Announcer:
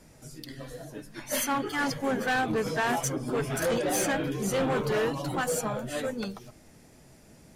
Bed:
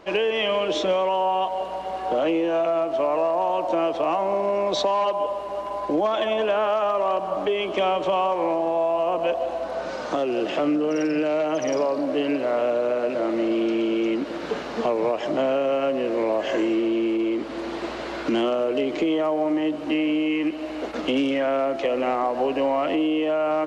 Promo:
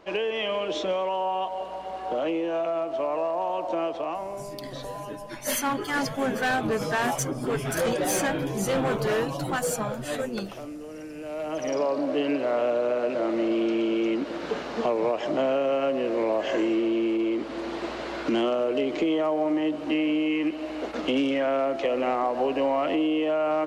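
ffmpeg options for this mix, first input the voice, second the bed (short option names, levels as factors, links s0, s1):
-filter_complex "[0:a]adelay=4150,volume=1.19[s0];[1:a]volume=2.99,afade=t=out:st=3.84:d=0.66:silence=0.266073,afade=t=in:st=11.18:d=0.71:silence=0.188365[s1];[s0][s1]amix=inputs=2:normalize=0"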